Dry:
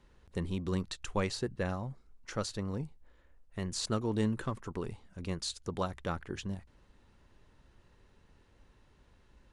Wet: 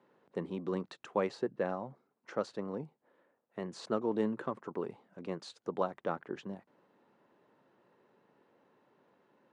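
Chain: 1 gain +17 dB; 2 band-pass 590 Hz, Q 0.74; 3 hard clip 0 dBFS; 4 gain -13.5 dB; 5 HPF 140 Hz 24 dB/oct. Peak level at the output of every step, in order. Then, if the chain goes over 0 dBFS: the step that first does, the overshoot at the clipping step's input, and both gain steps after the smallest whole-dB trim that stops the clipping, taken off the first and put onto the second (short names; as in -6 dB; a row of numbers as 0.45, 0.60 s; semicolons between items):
-1.0, -3.0, -3.0, -16.5, -16.5 dBFS; no overload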